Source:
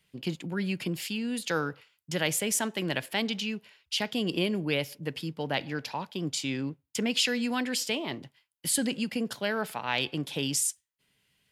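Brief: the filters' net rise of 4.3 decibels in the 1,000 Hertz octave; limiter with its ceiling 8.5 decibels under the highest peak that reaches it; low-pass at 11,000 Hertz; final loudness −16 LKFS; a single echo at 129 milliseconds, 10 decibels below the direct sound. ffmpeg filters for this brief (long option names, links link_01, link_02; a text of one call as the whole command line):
ffmpeg -i in.wav -af "lowpass=11000,equalizer=frequency=1000:width_type=o:gain=5.5,alimiter=limit=-18.5dB:level=0:latency=1,aecho=1:1:129:0.316,volume=15dB" out.wav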